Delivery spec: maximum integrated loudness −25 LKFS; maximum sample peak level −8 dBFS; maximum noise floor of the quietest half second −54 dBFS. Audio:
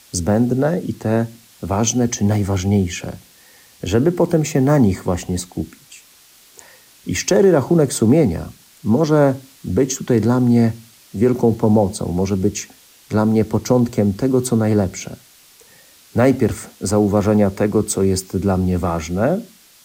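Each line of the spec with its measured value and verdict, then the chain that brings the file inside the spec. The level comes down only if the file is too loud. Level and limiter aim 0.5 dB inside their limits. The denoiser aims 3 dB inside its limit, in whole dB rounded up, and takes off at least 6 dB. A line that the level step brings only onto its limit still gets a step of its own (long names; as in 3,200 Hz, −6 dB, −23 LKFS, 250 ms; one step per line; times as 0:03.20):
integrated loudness −17.5 LKFS: out of spec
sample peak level −4.5 dBFS: out of spec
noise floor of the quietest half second −49 dBFS: out of spec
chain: level −8 dB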